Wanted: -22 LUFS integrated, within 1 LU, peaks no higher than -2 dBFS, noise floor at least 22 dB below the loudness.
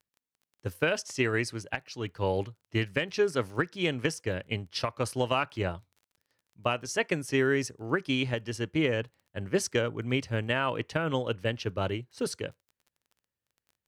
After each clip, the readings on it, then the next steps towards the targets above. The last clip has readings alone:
ticks 21/s; loudness -30.5 LUFS; peak -14.0 dBFS; loudness target -22.0 LUFS
-> de-click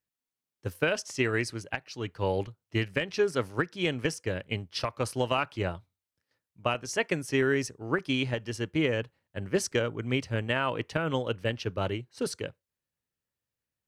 ticks 0/s; loudness -30.5 LUFS; peak -12.5 dBFS; loudness target -22.0 LUFS
-> gain +8.5 dB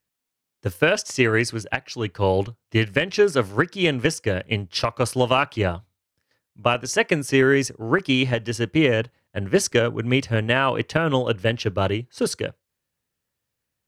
loudness -22.0 LUFS; peak -4.0 dBFS; noise floor -82 dBFS

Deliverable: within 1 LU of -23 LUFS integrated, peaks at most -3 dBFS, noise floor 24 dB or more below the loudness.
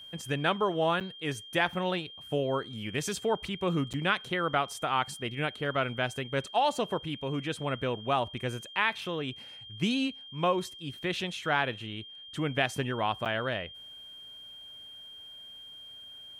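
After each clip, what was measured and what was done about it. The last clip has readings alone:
dropouts 3; longest dropout 7.6 ms; steady tone 3200 Hz; tone level -45 dBFS; loudness -31.0 LUFS; peak -13.0 dBFS; loudness target -23.0 LUFS
-> interpolate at 1/3.93/13.25, 7.6 ms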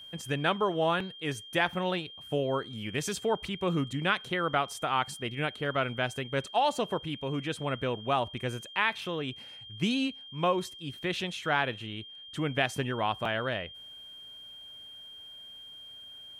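dropouts 0; steady tone 3200 Hz; tone level -45 dBFS
-> notch 3200 Hz, Q 30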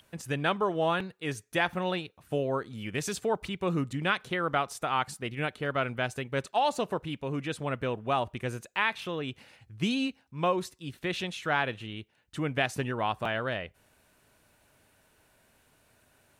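steady tone none; loudness -31.5 LUFS; peak -13.0 dBFS; loudness target -23.0 LUFS
-> gain +8.5 dB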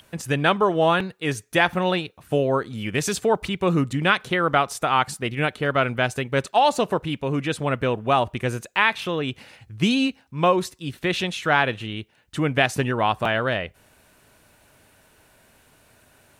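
loudness -23.0 LUFS; peak -4.5 dBFS; noise floor -59 dBFS

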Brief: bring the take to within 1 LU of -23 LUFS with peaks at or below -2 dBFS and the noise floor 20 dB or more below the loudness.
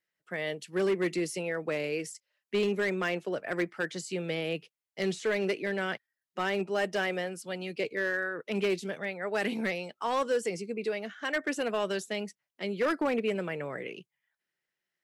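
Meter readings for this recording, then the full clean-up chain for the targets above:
clipped 1.1%; flat tops at -22.5 dBFS; loudness -32.0 LUFS; peak -22.5 dBFS; loudness target -23.0 LUFS
-> clip repair -22.5 dBFS; gain +9 dB

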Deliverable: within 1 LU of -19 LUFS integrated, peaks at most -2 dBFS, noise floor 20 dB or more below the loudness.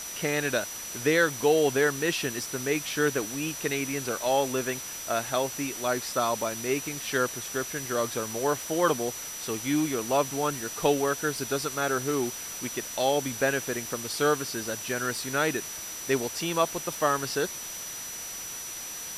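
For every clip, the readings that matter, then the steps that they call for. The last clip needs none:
steady tone 5900 Hz; tone level -38 dBFS; noise floor -38 dBFS; noise floor target -48 dBFS; loudness -28.0 LUFS; peak -9.5 dBFS; loudness target -19.0 LUFS
-> notch 5900 Hz, Q 30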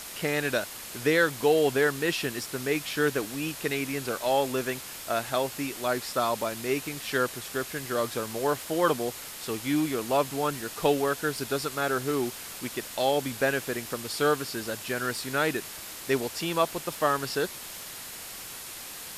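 steady tone none; noise floor -41 dBFS; noise floor target -49 dBFS
-> denoiser 8 dB, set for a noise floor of -41 dBFS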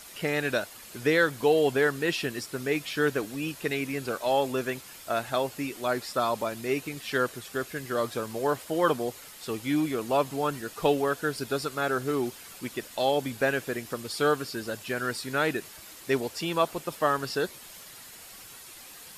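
noise floor -47 dBFS; noise floor target -49 dBFS
-> denoiser 6 dB, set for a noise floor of -47 dBFS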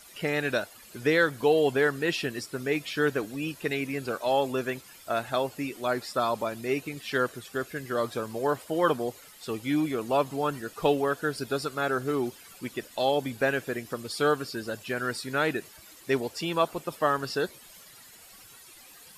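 noise floor -51 dBFS; loudness -29.0 LUFS; peak -9.5 dBFS; loudness target -19.0 LUFS
-> gain +10 dB; limiter -2 dBFS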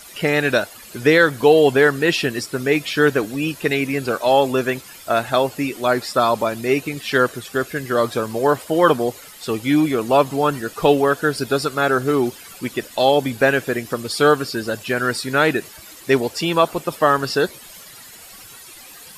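loudness -19.0 LUFS; peak -2.0 dBFS; noise floor -41 dBFS

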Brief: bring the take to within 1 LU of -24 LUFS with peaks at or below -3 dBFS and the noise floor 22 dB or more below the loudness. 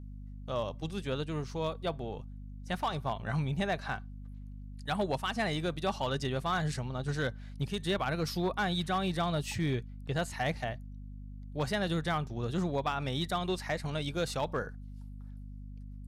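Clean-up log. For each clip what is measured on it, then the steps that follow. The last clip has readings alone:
clipped 0.6%; flat tops at -24.0 dBFS; hum 50 Hz; harmonics up to 250 Hz; hum level -42 dBFS; loudness -34.0 LUFS; peak -24.0 dBFS; loudness target -24.0 LUFS
-> clip repair -24 dBFS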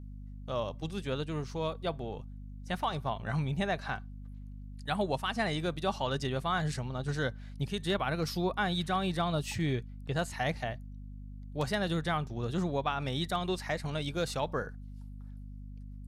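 clipped 0.0%; hum 50 Hz; harmonics up to 250 Hz; hum level -42 dBFS
-> notches 50/100/150/200/250 Hz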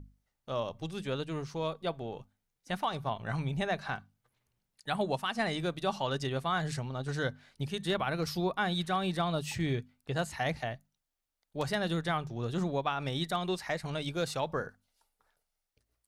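hum none; loudness -34.0 LUFS; peak -18.5 dBFS; loudness target -24.0 LUFS
-> gain +10 dB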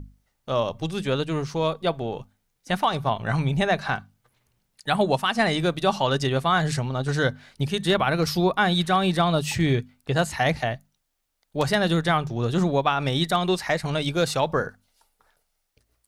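loudness -24.0 LUFS; peak -8.5 dBFS; noise floor -75 dBFS

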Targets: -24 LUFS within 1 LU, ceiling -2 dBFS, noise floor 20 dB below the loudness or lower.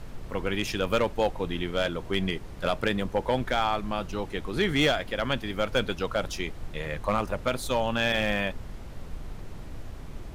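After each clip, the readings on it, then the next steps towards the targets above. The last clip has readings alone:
clipped 0.3%; flat tops at -16.0 dBFS; noise floor -41 dBFS; noise floor target -49 dBFS; loudness -28.5 LUFS; peak -16.0 dBFS; loudness target -24.0 LUFS
-> clip repair -16 dBFS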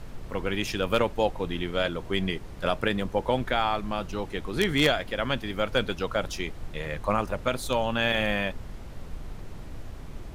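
clipped 0.0%; noise floor -41 dBFS; noise floor target -48 dBFS
-> noise print and reduce 7 dB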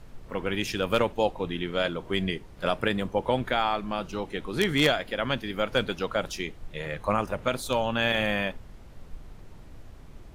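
noise floor -46 dBFS; noise floor target -48 dBFS
-> noise print and reduce 6 dB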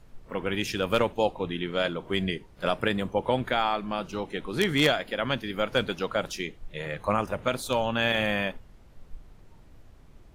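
noise floor -52 dBFS; loudness -28.0 LUFS; peak -7.0 dBFS; loudness target -24.0 LUFS
-> gain +4 dB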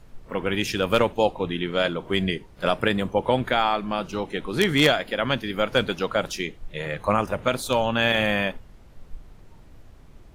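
loudness -24.0 LUFS; peak -3.0 dBFS; noise floor -48 dBFS

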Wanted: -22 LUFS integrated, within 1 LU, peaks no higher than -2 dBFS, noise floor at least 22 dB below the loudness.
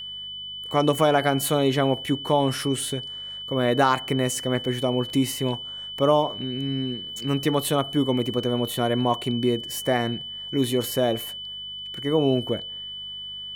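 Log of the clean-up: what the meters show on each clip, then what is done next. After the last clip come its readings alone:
hum 50 Hz; harmonics up to 200 Hz; hum level -55 dBFS; steady tone 3000 Hz; tone level -33 dBFS; loudness -24.5 LUFS; peak -6.5 dBFS; loudness target -22.0 LUFS
-> de-hum 50 Hz, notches 4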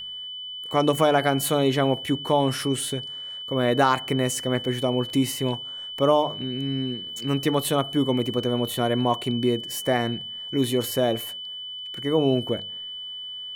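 hum none; steady tone 3000 Hz; tone level -33 dBFS
-> notch 3000 Hz, Q 30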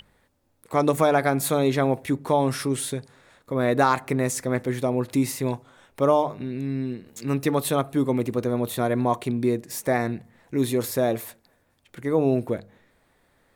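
steady tone none; loudness -24.5 LUFS; peak -6.5 dBFS; loudness target -22.0 LUFS
-> gain +2.5 dB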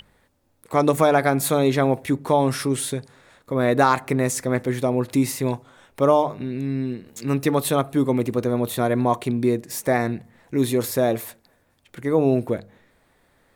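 loudness -22.0 LUFS; peak -4.0 dBFS; noise floor -64 dBFS

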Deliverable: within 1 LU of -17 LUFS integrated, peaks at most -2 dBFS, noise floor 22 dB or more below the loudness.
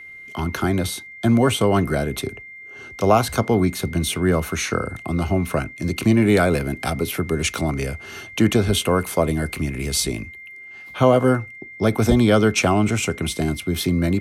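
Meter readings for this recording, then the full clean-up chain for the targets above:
steady tone 2100 Hz; tone level -37 dBFS; loudness -20.5 LUFS; peak -4.0 dBFS; loudness target -17.0 LUFS
-> notch 2100 Hz, Q 30; gain +3.5 dB; limiter -2 dBFS

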